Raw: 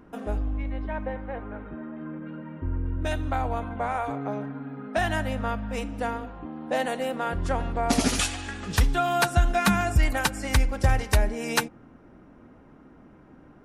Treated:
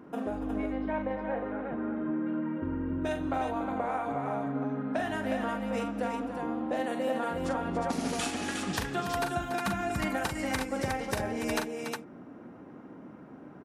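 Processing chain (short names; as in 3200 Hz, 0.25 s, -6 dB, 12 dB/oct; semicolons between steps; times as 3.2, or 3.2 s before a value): HPF 160 Hz 12 dB/oct; tilt shelf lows +3 dB, about 1400 Hz; compressor 5:1, threshold -30 dBFS, peak gain reduction 13.5 dB; tapped delay 42/286/361 ms -6.5/-10/-4.5 dB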